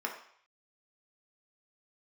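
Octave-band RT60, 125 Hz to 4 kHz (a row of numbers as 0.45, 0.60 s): 0.60, 0.45, 0.55, 0.65, 0.65, 0.65 s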